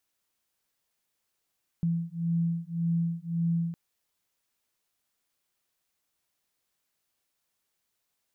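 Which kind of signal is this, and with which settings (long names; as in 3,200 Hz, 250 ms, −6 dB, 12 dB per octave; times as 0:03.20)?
two tones that beat 167 Hz, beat 1.8 Hz, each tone −29 dBFS 1.91 s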